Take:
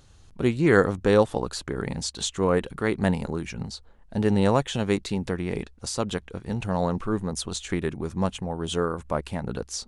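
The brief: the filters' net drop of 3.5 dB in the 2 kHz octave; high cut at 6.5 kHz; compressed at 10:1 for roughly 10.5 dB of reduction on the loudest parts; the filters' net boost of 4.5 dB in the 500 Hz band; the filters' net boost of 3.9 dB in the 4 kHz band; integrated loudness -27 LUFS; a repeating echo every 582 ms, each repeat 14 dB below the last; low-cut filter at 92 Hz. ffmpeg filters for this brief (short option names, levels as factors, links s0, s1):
-af "highpass=92,lowpass=6500,equalizer=f=500:t=o:g=5.5,equalizer=f=2000:t=o:g=-6.5,equalizer=f=4000:t=o:g=7,acompressor=threshold=0.1:ratio=10,aecho=1:1:582|1164:0.2|0.0399,volume=1.12"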